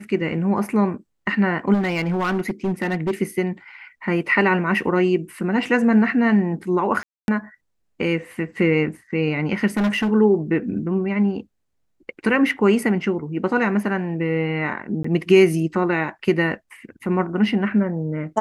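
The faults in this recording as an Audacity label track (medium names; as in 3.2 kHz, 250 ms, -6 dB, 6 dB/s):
1.730000	3.110000	clipped -18 dBFS
7.030000	7.280000	dropout 251 ms
9.770000	10.120000	clipped -17 dBFS
15.030000	15.040000	dropout 14 ms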